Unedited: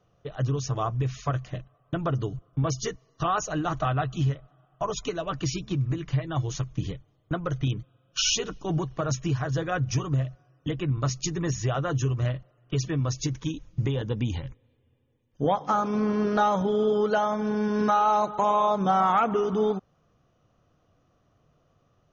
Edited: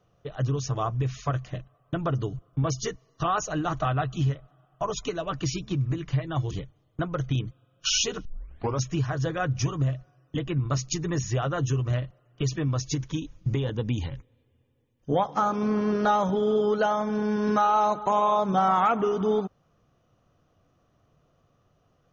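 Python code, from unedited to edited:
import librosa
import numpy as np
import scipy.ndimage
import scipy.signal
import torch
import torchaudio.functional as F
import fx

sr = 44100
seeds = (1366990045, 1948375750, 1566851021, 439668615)

y = fx.edit(x, sr, fx.cut(start_s=6.51, length_s=0.32),
    fx.tape_start(start_s=8.57, length_s=0.57), tone=tone)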